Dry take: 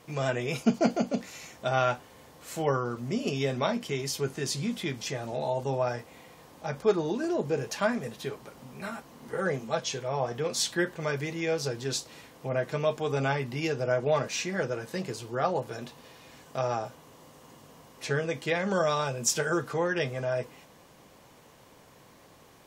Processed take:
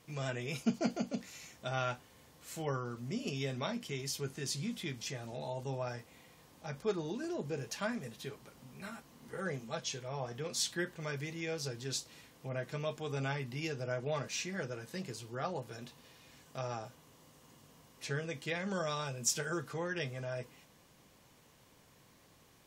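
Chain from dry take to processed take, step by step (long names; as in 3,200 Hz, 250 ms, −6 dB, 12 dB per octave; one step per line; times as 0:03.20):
parametric band 660 Hz −6.5 dB 2.6 octaves
level −5 dB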